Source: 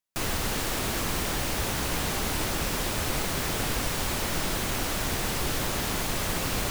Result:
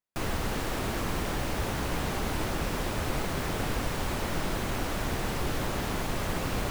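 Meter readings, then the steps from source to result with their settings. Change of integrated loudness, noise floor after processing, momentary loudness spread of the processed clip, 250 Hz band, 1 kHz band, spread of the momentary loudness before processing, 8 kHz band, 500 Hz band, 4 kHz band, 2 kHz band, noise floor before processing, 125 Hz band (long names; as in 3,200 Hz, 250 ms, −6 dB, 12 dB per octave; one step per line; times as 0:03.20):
−3.5 dB, −33 dBFS, 1 LU, 0.0 dB, −1.0 dB, 0 LU, −9.0 dB, −0.5 dB, −6.5 dB, −3.5 dB, −30 dBFS, 0.0 dB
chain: high-shelf EQ 2,700 Hz −10 dB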